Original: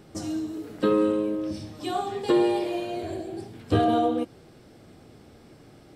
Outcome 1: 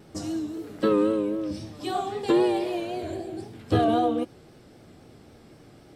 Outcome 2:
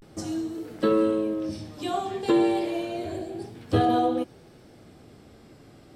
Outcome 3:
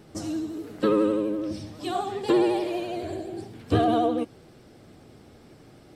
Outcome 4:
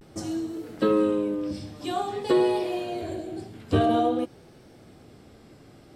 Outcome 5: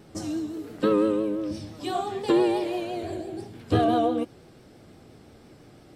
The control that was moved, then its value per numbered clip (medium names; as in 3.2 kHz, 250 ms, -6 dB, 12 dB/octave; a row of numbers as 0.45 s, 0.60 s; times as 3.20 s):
vibrato, rate: 3.8 Hz, 0.31 Hz, 12 Hz, 0.5 Hz, 5.9 Hz